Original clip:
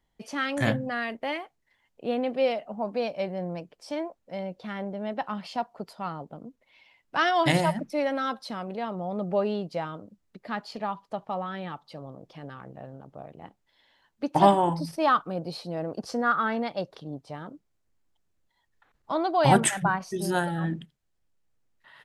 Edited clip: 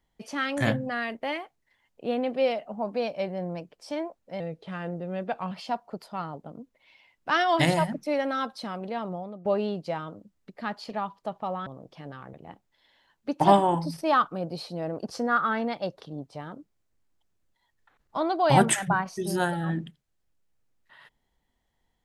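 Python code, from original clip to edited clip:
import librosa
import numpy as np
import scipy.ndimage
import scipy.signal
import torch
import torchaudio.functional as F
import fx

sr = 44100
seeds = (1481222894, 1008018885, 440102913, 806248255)

y = fx.edit(x, sr, fx.speed_span(start_s=4.4, length_s=0.98, speed=0.88),
    fx.fade_out_to(start_s=8.99, length_s=0.33, curve='qua', floor_db=-14.0),
    fx.cut(start_s=11.53, length_s=0.51),
    fx.cut(start_s=12.71, length_s=0.57), tone=tone)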